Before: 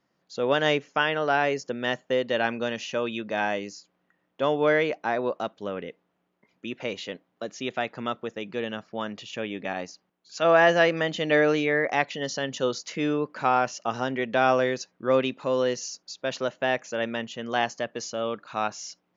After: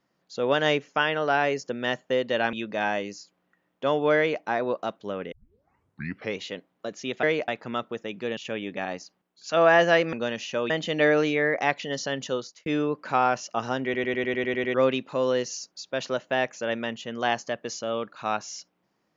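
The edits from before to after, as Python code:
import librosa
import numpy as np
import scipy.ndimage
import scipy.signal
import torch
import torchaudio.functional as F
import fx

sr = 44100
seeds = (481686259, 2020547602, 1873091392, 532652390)

y = fx.edit(x, sr, fx.move(start_s=2.53, length_s=0.57, to_s=11.01),
    fx.duplicate(start_s=4.74, length_s=0.25, to_s=7.8),
    fx.tape_start(start_s=5.89, length_s=1.08),
    fx.cut(start_s=8.69, length_s=0.56),
    fx.fade_out_span(start_s=12.53, length_s=0.44),
    fx.stutter_over(start_s=14.15, slice_s=0.1, count=9), tone=tone)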